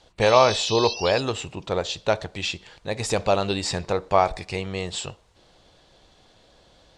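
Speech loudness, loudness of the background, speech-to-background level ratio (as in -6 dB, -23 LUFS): -24.0 LUFS, -29.0 LUFS, 5.0 dB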